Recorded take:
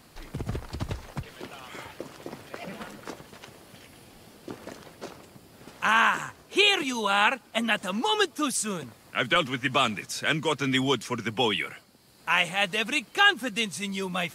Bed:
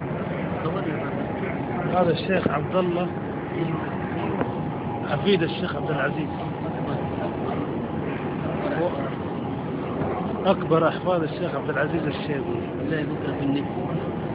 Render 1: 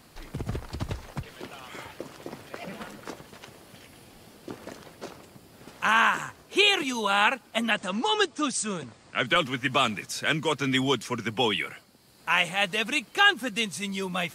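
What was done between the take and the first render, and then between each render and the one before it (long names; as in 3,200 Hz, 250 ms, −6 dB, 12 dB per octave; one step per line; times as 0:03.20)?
0:07.71–0:09.27: Butterworth low-pass 9,000 Hz 72 dB per octave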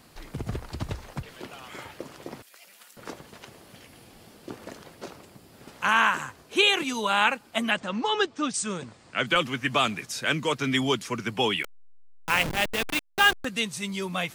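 0:02.42–0:02.97: first difference
0:07.80–0:08.54: high-frequency loss of the air 96 metres
0:11.63–0:13.45: hold until the input has moved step −24 dBFS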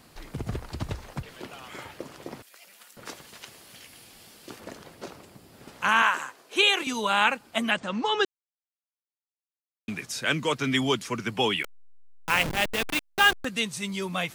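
0:03.06–0:04.60: tilt shelving filter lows −6 dB, about 1,400 Hz
0:06.02–0:06.87: high-pass filter 370 Hz
0:08.25–0:09.88: silence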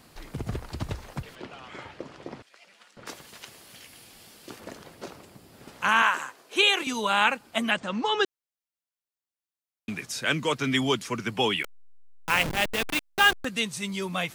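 0:01.35–0:03.07: high-frequency loss of the air 98 metres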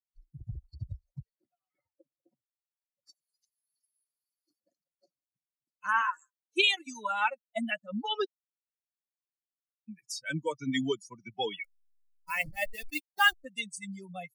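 spectral dynamics exaggerated over time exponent 3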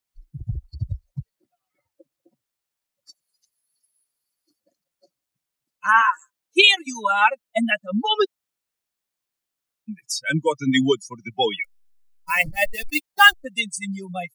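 level +11.5 dB
brickwall limiter −1 dBFS, peak gain reduction 1.5 dB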